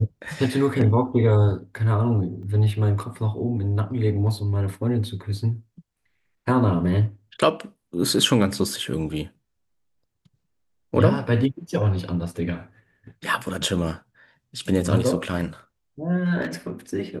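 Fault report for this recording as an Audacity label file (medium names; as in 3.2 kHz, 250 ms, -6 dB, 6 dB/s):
2.430000	2.430000	dropout 2.2 ms
16.410000	16.720000	clipped -23 dBFS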